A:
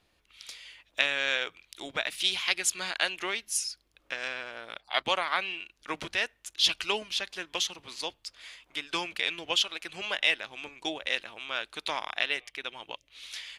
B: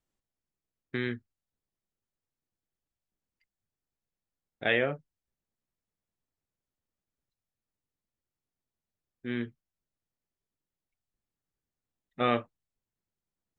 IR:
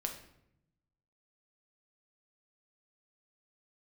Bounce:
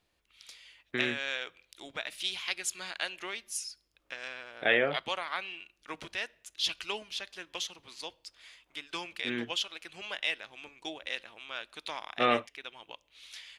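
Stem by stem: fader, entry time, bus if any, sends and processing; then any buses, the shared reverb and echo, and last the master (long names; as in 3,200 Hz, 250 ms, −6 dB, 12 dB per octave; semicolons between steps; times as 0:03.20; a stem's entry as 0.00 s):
−7.5 dB, 0.00 s, send −18 dB, no processing
+2.0 dB, 0.00 s, no send, high-pass filter 370 Hz 6 dB per octave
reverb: on, RT60 0.75 s, pre-delay 6 ms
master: no processing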